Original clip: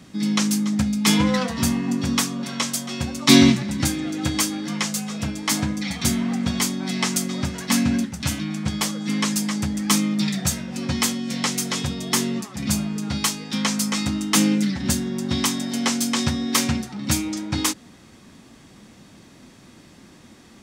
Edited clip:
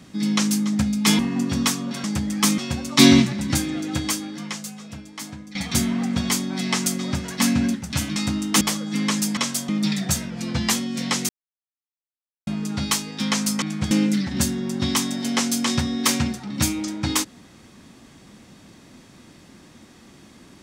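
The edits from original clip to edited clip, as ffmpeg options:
-filter_complex "[0:a]asplit=15[a][b][c][d][e][f][g][h][i][j][k][l][m][n][o];[a]atrim=end=1.192[p];[b]atrim=start=1.708:end=2.562[q];[c]atrim=start=9.508:end=10.052[r];[d]atrim=start=2.878:end=5.85,asetpts=PTS-STARTPTS,afade=t=out:st=1.192:d=1.78:c=qua:silence=0.199526[s];[e]atrim=start=5.85:end=8.462,asetpts=PTS-STARTPTS,afade=t=in:d=0.004:c=hsin:silence=0.199526[t];[f]atrim=start=13.948:end=14.402[u];[g]atrim=start=8.748:end=9.512[v];[h]atrim=start=2.558:end=2.882[w];[i]atrim=start=10.048:end=10.664[x];[j]atrim=start=10.66:end=11.06,asetpts=PTS-STARTPTS,asetrate=41013,aresample=44100[y];[k]atrim=start=11.056:end=11.62,asetpts=PTS-STARTPTS,afade=t=out:st=0.56:d=0.004:c=hsin[z];[l]atrim=start=11.62:end=12.8,asetpts=PTS-STARTPTS,volume=0[aa];[m]atrim=start=12.8:end=13.952,asetpts=PTS-STARTPTS,afade=t=in:d=0.004:c=hsin[ab];[n]atrim=start=8.458:end=8.752[ac];[o]atrim=start=14.398[ad];[p][q]acrossfade=d=0.004:c1=hsin:c2=hsin[ae];[ae][r]acrossfade=d=0.004:c1=hsin:c2=hsin[af];[s][t]concat=n=2:v=0:a=1[ag];[af][ag]acrossfade=d=0.004:c1=hsin:c2=hsin[ah];[ah][u]acrossfade=d=0.004:c1=hsin:c2=hsin[ai];[ai][v]acrossfade=d=0.004:c1=hsin:c2=hsin[aj];[aj][w]acrossfade=d=0.004:c1=hsin:c2=hsin[ak];[ak][x]acrossfade=d=0.004:c1=hsin:c2=hsin[al];[al][y]acrossfade=d=0.004:c1=hsin:c2=hsin[am];[z][aa][ab]concat=n=3:v=0:a=1[an];[am][an]acrossfade=d=0.004:c1=hsin:c2=hsin[ao];[ao][ac]acrossfade=d=0.004:c1=hsin:c2=hsin[ap];[ap][ad]acrossfade=d=0.004:c1=hsin:c2=hsin"

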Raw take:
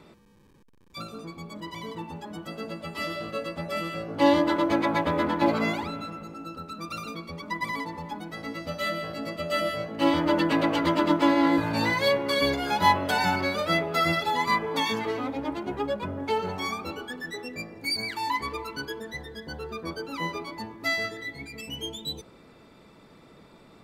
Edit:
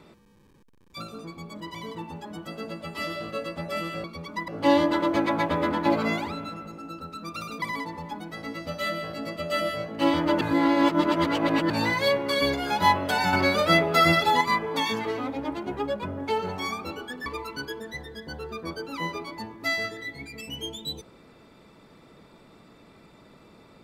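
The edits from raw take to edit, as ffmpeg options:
-filter_complex "[0:a]asplit=9[a][b][c][d][e][f][g][h][i];[a]atrim=end=4.042[j];[b]atrim=start=7.178:end=7.622[k];[c]atrim=start=4.038:end=7.182[l];[d]atrim=start=7.618:end=10.412[m];[e]atrim=start=10.408:end=11.702,asetpts=PTS-STARTPTS,areverse[n];[f]atrim=start=11.698:end=13.332[o];[g]atrim=start=13.328:end=14.412,asetpts=PTS-STARTPTS,volume=5dB[p];[h]atrim=start=14.408:end=17.262[q];[i]atrim=start=18.458[r];[j][k]acrossfade=d=0.004:c1=hsin:c2=hsin[s];[s][l]acrossfade=d=0.004:c1=hsin:c2=hsin[t];[t][m]acrossfade=d=0.004:c1=hsin:c2=hsin[u];[u][n]acrossfade=d=0.004:c1=hsin:c2=hsin[v];[v][o]acrossfade=d=0.004:c1=hsin:c2=hsin[w];[w][p]acrossfade=d=0.004:c1=hsin:c2=hsin[x];[x][q]acrossfade=d=0.004:c1=hsin:c2=hsin[y];[y][r]acrossfade=d=0.004:c1=hsin:c2=hsin"

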